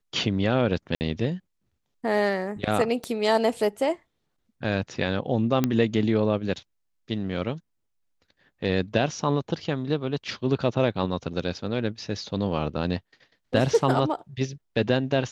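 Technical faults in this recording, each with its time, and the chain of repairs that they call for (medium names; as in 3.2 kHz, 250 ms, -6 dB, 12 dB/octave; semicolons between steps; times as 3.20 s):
0.95–1.01 s: dropout 59 ms
3.04 s: pop -19 dBFS
5.64 s: pop -9 dBFS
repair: de-click; interpolate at 0.95 s, 59 ms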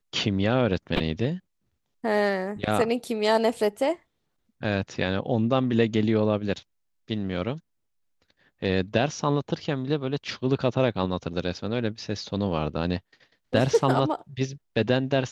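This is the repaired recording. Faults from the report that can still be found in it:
3.04 s: pop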